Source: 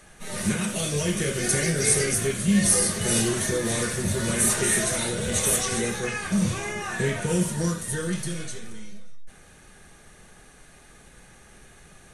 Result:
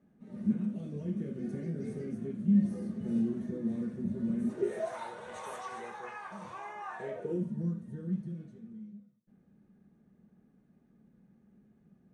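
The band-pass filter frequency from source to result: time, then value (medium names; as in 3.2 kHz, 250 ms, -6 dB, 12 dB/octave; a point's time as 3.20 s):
band-pass filter, Q 4.2
4.46 s 230 Hz
4.96 s 940 Hz
6.95 s 940 Hz
7.49 s 210 Hz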